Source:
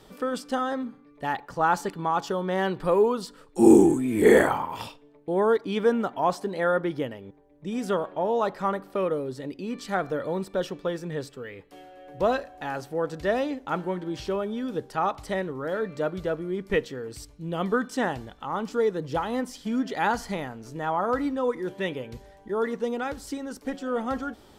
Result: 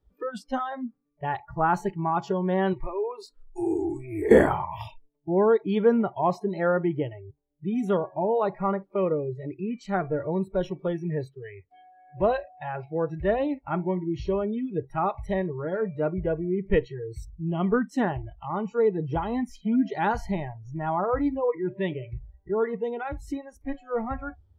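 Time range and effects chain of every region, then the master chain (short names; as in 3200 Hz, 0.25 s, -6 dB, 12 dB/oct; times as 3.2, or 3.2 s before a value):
2.73–4.31 bell 180 Hz -15 dB 0.71 oct + compressor 2.5:1, threshold -31 dBFS
11.29–12.96 low shelf 63 Hz -9 dB + careless resampling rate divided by 4×, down none, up filtered
whole clip: tilt -2.5 dB/oct; spectral noise reduction 28 dB; gain -1 dB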